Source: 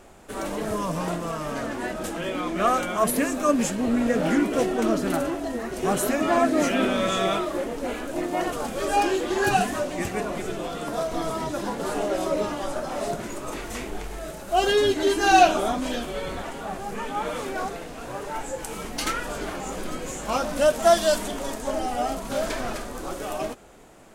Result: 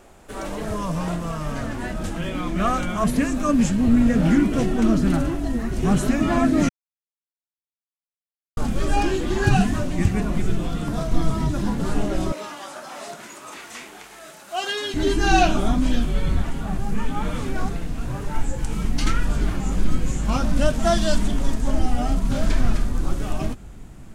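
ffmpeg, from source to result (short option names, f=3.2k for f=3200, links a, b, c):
-filter_complex "[0:a]asettb=1/sr,asplit=3[a][b][c];[a]atrim=end=12.324[d];[b]atrim=start=12.32:end=14.94,asetpts=PTS-STARTPTS,afade=t=in:d=0.004:c=qsin,afade=t=out:st=2.616:d=0.004:c=qsin,highpass=690[e];[c]atrim=start=14.936[f];[d][e]acrossfade=d=0.004:c1=hsin:c2=qsin[g];[g][f]acrossfade=d=0.004:c1=qsin:c2=hsin,asplit=3[h][i][j];[h]atrim=end=6.69,asetpts=PTS-STARTPTS,afade=t=out:st=6.686:d=0.004:c=hsin[k];[i]atrim=start=6.69:end=8.57,asetpts=PTS-STARTPTS,volume=0[l];[j]atrim=start=8.57,asetpts=PTS-STARTPTS,afade=t=in:d=0.004:c=hsin[m];[k][l][m]concat=n=3:v=0:a=1,acrossover=split=8600[n][o];[o]acompressor=threshold=-51dB:ratio=4:attack=1:release=60[p];[n][p]amix=inputs=2:normalize=0,asubboost=boost=10:cutoff=160"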